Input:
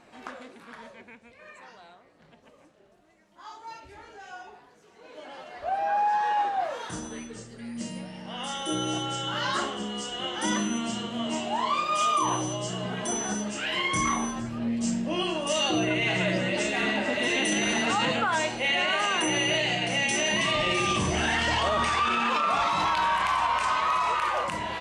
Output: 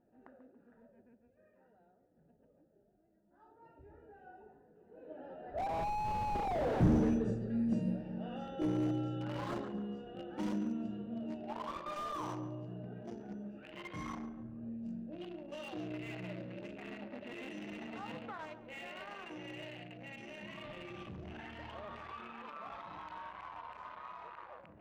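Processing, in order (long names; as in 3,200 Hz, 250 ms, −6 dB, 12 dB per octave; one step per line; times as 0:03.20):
adaptive Wiener filter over 41 samples
source passing by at 0:06.78, 5 m/s, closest 1.4 metres
low-pass that shuts in the quiet parts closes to 2,000 Hz, open at −45 dBFS
on a send: feedback echo with a low-pass in the loop 140 ms, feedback 44%, low-pass 1,600 Hz, level −11.5 dB
on the sum: slew-rate limiting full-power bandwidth 2.4 Hz
level +15.5 dB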